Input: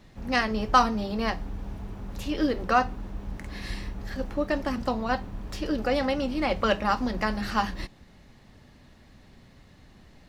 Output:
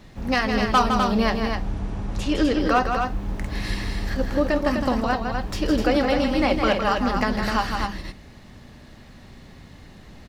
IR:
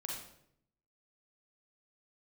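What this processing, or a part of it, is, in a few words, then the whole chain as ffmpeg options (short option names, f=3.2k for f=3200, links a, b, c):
clipper into limiter: -filter_complex "[0:a]asoftclip=type=hard:threshold=-12.5dB,alimiter=limit=-17.5dB:level=0:latency=1:release=368,asettb=1/sr,asplit=3[a][b][c];[a]atrim=end=1.484[d];[b]atrim=start=1.48:end=2.6,asetpts=PTS-STARTPTS,afade=t=in:d=0.004:c=qsin,afade=t=out:st=1.116:d=0.004:c=qsin,lowpass=f=9.8k:w=0.5412,lowpass=f=9.8k:w=1.3066[e];[c]atrim=start=2.596[f];[d][e]acrossfade=d=0.004:c1=hsin:c2=qsin[g];[g][f]acrossfade=d=0.004:c1=qsin:c2=hsin,aecho=1:1:160|253:0.473|0.531,volume=6.5dB"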